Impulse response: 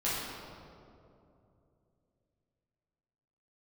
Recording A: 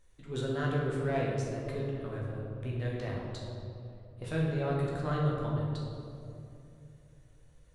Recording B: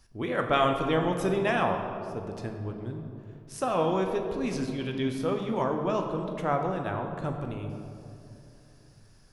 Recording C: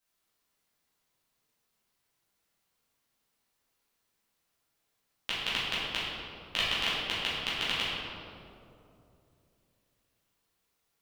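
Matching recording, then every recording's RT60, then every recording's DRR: C; 2.8, 2.8, 2.8 seconds; −4.5, 3.0, −10.0 decibels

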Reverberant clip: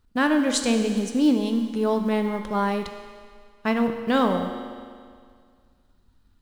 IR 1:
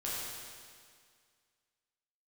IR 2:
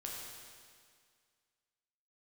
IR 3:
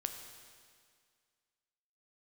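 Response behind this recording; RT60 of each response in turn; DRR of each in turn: 3; 2.0, 2.0, 2.0 seconds; −7.5, −3.0, 5.5 decibels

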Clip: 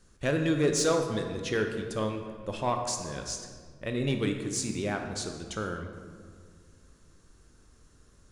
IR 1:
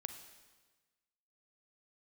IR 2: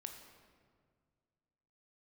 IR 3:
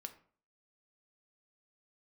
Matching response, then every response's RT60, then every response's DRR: 2; 1.3, 1.9, 0.45 seconds; 7.5, 4.0, 6.5 decibels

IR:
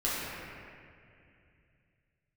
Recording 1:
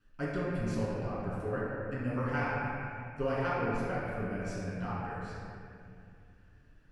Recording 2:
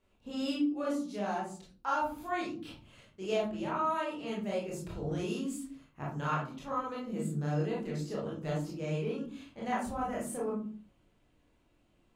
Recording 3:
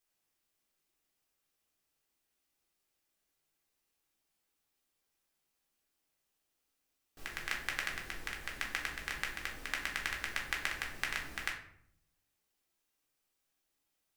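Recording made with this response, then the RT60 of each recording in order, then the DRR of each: 1; 2.5, 0.45, 0.70 seconds; −9.5, −5.5, −1.5 decibels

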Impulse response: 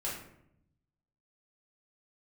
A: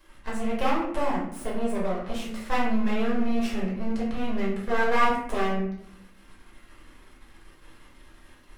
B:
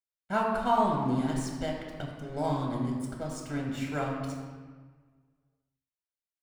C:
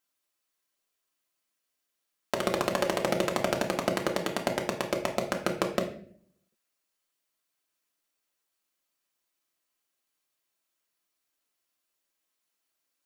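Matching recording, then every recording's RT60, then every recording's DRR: A; 0.75, 1.5, 0.55 seconds; −6.5, −1.5, 0.0 decibels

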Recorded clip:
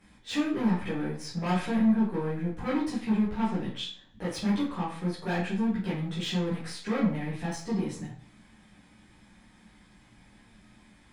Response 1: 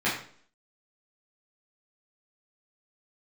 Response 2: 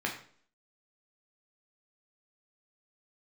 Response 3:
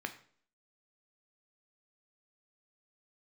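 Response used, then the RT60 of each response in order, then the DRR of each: 1; 0.50, 0.50, 0.50 seconds; −9.0, 0.0, 7.0 decibels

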